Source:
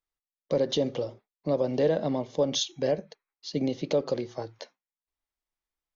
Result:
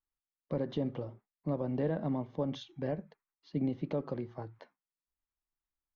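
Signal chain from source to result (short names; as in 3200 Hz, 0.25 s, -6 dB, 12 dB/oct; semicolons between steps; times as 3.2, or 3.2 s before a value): LPF 1300 Hz 12 dB/oct; bell 520 Hz -11.5 dB 1.3 oct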